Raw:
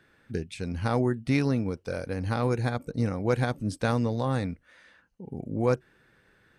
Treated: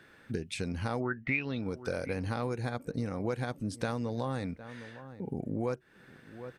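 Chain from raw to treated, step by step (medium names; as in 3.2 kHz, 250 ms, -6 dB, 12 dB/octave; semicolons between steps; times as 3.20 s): 1.00–1.61 s: resonant low-pass 1.2 kHz -> 4 kHz, resonance Q 11; echo from a far wall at 130 m, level -24 dB; compression 5:1, threshold -35 dBFS, peak gain reduction 20 dB; bass shelf 100 Hz -7 dB; trim +5 dB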